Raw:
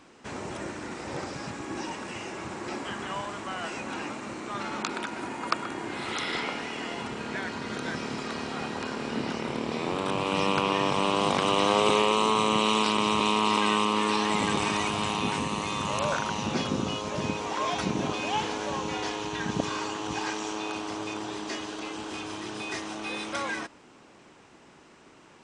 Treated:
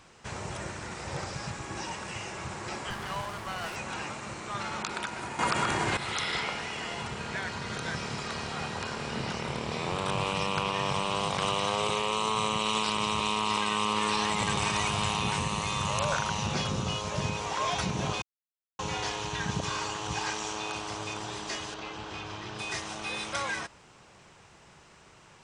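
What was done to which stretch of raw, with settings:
2.9–3.76 running maximum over 5 samples
5.39–5.97 gain +12 dB
18.22–18.79 mute
21.74–22.59 air absorption 130 m
whole clip: tone controls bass +7 dB, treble +3 dB; limiter -15.5 dBFS; bell 270 Hz -13.5 dB 0.93 oct

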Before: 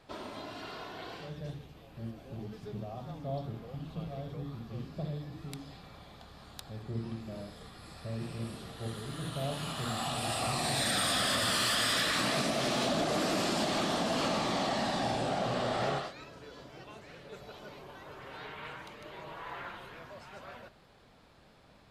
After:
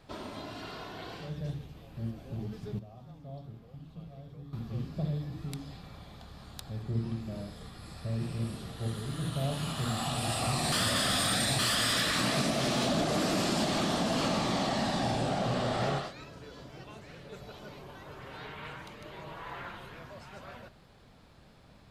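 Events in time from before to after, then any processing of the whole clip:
2.79–4.53 gain -11 dB
10.72–11.59 reverse
whole clip: tone controls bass +6 dB, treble +2 dB

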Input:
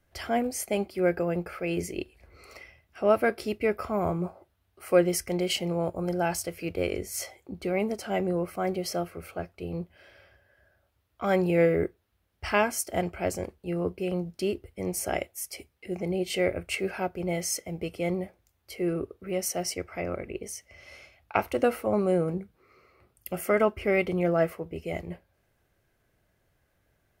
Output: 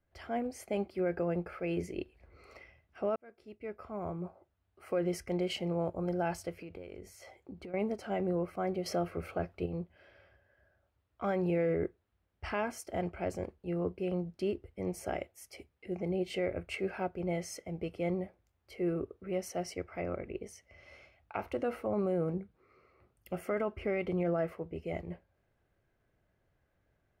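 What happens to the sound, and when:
3.16–5.04 fade in
6.58–7.74 compressor 12:1, threshold -37 dBFS
8.86–9.66 gain +6.5 dB
whole clip: LPF 2000 Hz 6 dB/oct; AGC gain up to 5 dB; limiter -14.5 dBFS; gain -9 dB

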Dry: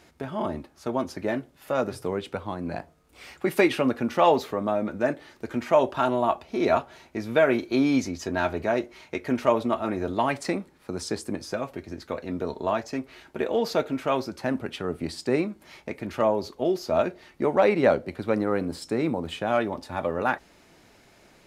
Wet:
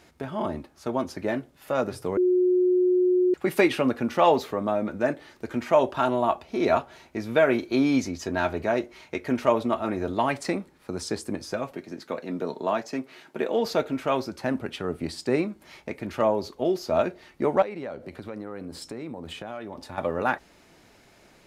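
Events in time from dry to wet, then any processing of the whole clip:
2.17–3.34 bleep 363 Hz -17.5 dBFS
11.72–13.66 HPF 140 Hz 24 dB/oct
17.62–19.98 compressor 4:1, threshold -34 dBFS

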